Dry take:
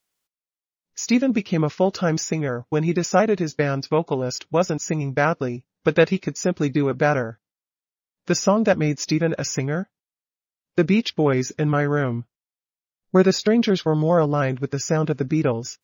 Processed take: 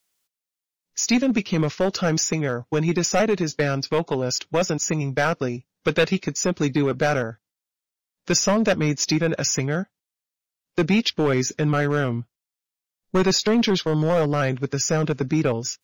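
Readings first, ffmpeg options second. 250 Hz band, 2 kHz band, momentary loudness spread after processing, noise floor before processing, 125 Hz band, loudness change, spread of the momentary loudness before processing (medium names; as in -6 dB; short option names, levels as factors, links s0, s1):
-1.0 dB, +0.5 dB, 6 LU, under -85 dBFS, -1.0 dB, -0.5 dB, 7 LU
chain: -filter_complex "[0:a]highshelf=f=2300:g=6,acrossover=split=110|2000[s0][s1][s2];[s1]volume=5.62,asoftclip=hard,volume=0.178[s3];[s0][s3][s2]amix=inputs=3:normalize=0"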